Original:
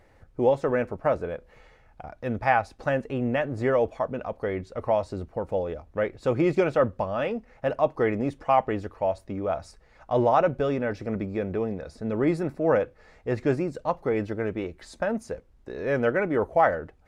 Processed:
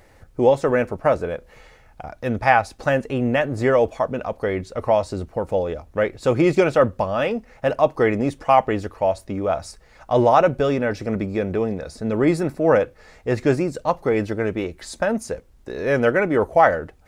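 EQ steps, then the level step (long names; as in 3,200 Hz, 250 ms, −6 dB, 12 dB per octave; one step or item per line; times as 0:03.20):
high-shelf EQ 4,600 Hz +10 dB
+5.5 dB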